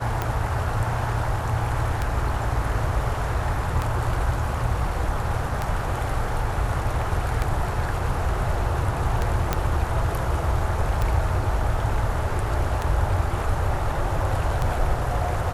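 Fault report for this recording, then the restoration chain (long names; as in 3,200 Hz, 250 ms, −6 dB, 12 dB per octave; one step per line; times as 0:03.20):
scratch tick 33 1/3 rpm −11 dBFS
0:09.53: click −7 dBFS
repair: click removal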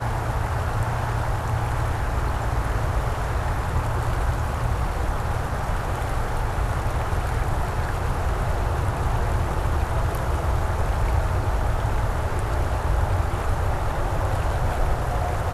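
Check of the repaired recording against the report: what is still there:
none of them is left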